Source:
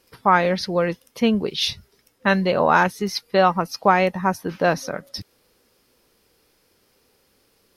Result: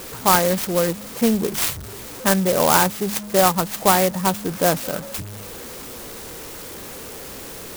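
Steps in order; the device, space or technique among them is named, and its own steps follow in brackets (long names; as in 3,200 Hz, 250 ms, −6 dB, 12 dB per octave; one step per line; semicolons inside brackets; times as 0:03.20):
hum removal 103.6 Hz, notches 2
early CD player with a faulty converter (converter with a step at zero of −29 dBFS; converter with an unsteady clock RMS 0.1 ms)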